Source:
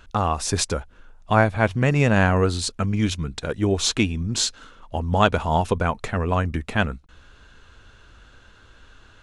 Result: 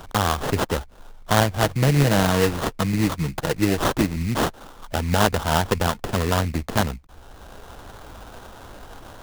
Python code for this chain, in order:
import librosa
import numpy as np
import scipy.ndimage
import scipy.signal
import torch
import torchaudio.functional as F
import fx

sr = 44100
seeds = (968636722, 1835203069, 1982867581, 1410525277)

y = fx.comb(x, sr, ms=6.3, depth=0.47, at=(1.58, 4.16))
y = fx.sample_hold(y, sr, seeds[0], rate_hz=2300.0, jitter_pct=20)
y = fx.band_squash(y, sr, depth_pct=40)